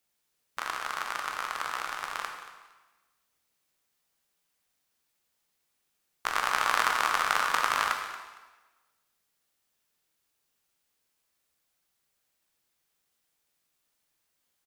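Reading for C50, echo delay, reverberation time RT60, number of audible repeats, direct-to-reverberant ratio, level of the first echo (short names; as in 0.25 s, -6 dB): 4.5 dB, 0.23 s, 1.2 s, 2, 2.0 dB, -15.0 dB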